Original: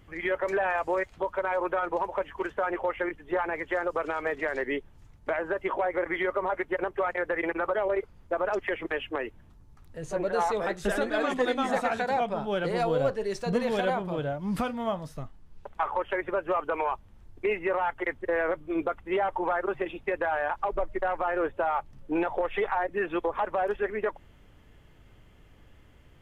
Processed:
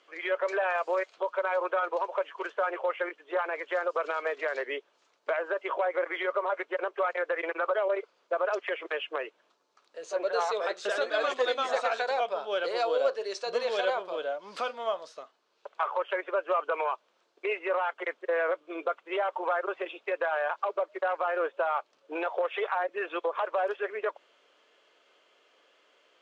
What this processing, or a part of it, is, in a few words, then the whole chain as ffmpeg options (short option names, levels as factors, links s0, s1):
phone speaker on a table: -af "highpass=f=480:w=0.5412,highpass=f=480:w=1.3066,equalizer=f=830:t=q:w=4:g=-8,equalizer=f=1900:t=q:w=4:g=-7,equalizer=f=4200:t=q:w=4:g=4,lowpass=f=6800:w=0.5412,lowpass=f=6800:w=1.3066,volume=1.33"